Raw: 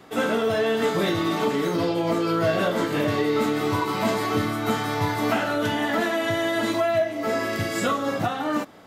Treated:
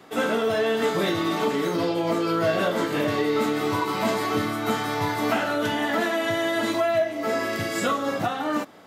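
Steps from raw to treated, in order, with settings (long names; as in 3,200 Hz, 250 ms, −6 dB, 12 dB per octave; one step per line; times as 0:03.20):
high-pass filter 150 Hz 6 dB per octave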